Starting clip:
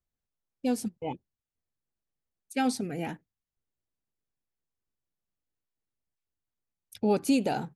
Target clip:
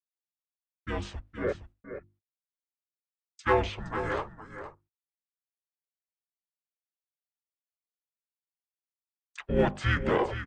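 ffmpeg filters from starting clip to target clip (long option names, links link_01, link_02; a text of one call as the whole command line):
ffmpeg -i in.wav -filter_complex "[0:a]lowshelf=frequency=760:width_type=q:width=1.5:gain=-9.5,asetrate=32667,aresample=44100,highpass=170,bass=frequency=250:gain=-3,treble=frequency=4000:gain=-14,acrossover=split=3300[link_01][link_02];[link_02]acompressor=threshold=-60dB:ratio=8[link_03];[link_01][link_03]amix=inputs=2:normalize=0,asplit=3[link_04][link_05][link_06];[link_05]asetrate=29433,aresample=44100,atempo=1.49831,volume=-12dB[link_07];[link_06]asetrate=35002,aresample=44100,atempo=1.25992,volume=-1dB[link_08];[link_04][link_07][link_08]amix=inputs=3:normalize=0,afreqshift=-88,asplit=2[link_09][link_10];[link_10]aeval=exprs='clip(val(0),-1,0.0355)':channel_layout=same,volume=-4.5dB[link_11];[link_09][link_11]amix=inputs=2:normalize=0,bandreject=frequency=50:width_type=h:width=6,bandreject=frequency=100:width_type=h:width=6,bandreject=frequency=150:width_type=h:width=6,bandreject=frequency=200:width_type=h:width=6,bandreject=frequency=250:width_type=h:width=6,bandreject=frequency=300:width_type=h:width=6,bandreject=frequency=350:width_type=h:width=6,agate=range=-31dB:threshold=-57dB:ratio=16:detection=peak,dynaudnorm=framelen=600:gausssize=3:maxgain=10.5dB,aecho=1:1:466:0.299,volume=-6dB" out.wav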